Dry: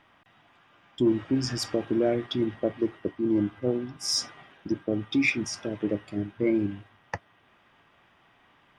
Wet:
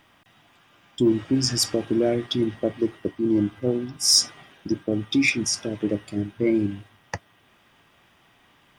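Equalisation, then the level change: tilt shelf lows +4.5 dB, about 740 Hz; high shelf 2300 Hz +10 dB; high shelf 5300 Hz +11 dB; 0.0 dB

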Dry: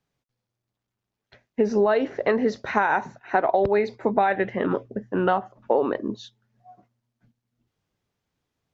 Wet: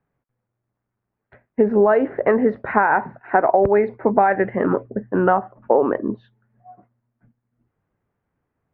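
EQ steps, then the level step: LPF 1900 Hz 24 dB/oct; +5.0 dB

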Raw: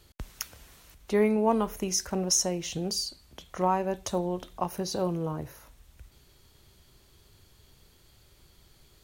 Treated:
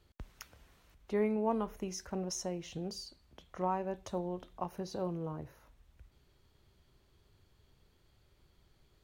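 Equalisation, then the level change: bell 12000 Hz -11.5 dB 2.2 oct; -7.5 dB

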